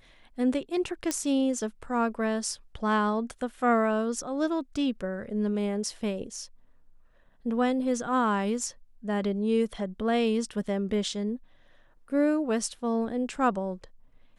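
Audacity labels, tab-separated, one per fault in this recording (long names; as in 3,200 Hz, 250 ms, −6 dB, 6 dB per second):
1.110000	1.110000	click −13 dBFS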